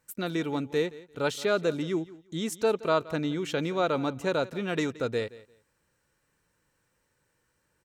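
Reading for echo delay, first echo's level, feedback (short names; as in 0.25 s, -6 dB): 0.173 s, -19.0 dB, 20%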